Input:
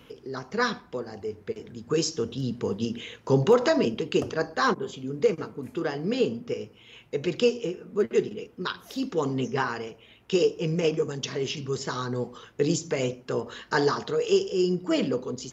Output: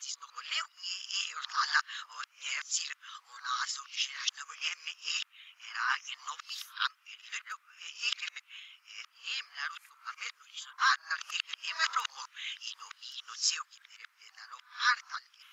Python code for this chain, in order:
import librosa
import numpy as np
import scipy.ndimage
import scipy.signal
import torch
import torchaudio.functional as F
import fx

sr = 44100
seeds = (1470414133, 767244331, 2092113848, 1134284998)

y = x[::-1].copy()
y = scipy.signal.sosfilt(scipy.signal.ellip(4, 1.0, 70, 1200.0, 'highpass', fs=sr, output='sos'), y)
y = y * 10.0 ** (1.5 / 20.0)